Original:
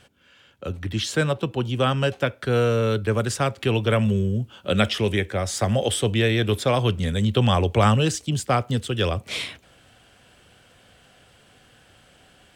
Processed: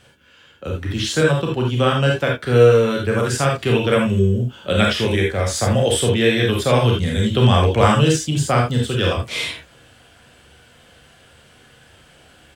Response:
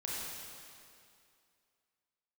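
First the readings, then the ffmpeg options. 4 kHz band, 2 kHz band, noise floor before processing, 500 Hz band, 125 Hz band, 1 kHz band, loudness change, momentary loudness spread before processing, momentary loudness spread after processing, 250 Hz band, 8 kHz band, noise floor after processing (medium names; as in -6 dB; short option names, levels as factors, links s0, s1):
+4.5 dB, +5.5 dB, -56 dBFS, +6.5 dB, +4.5 dB, +4.5 dB, +5.0 dB, 7 LU, 8 LU, +4.5 dB, +5.0 dB, -51 dBFS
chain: -filter_complex "[0:a]asplit=2[s0][s1];[s1]adelay=13,volume=0.251[s2];[s0][s2]amix=inputs=2:normalize=0[s3];[1:a]atrim=start_sample=2205,atrim=end_sample=3969[s4];[s3][s4]afir=irnorm=-1:irlink=0,volume=1.88"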